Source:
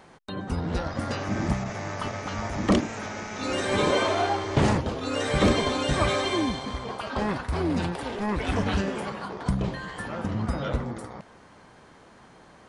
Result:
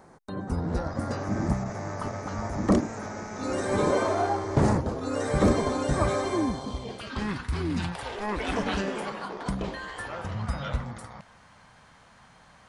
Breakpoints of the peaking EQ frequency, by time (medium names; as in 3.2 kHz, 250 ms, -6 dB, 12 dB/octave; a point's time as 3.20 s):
peaking EQ -14.5 dB 1.1 oct
6.52 s 3 kHz
7.18 s 620 Hz
7.73 s 620 Hz
8.43 s 95 Hz
9.53 s 95 Hz
10.55 s 360 Hz